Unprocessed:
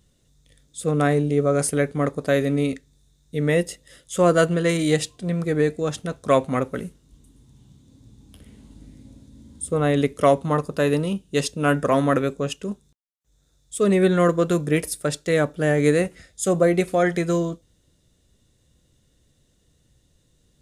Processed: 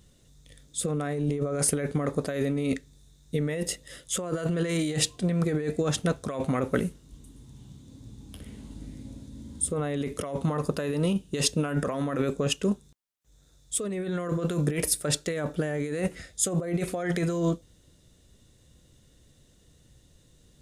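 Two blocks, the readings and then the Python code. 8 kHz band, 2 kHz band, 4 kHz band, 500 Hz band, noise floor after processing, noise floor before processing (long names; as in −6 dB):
+2.0 dB, −9.0 dB, −0.5 dB, −9.5 dB, −60 dBFS, −64 dBFS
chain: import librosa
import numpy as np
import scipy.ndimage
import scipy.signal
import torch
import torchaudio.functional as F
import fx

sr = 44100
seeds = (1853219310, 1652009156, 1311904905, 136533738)

y = fx.over_compress(x, sr, threshold_db=-26.0, ratio=-1.0)
y = y * librosa.db_to_amplitude(-1.5)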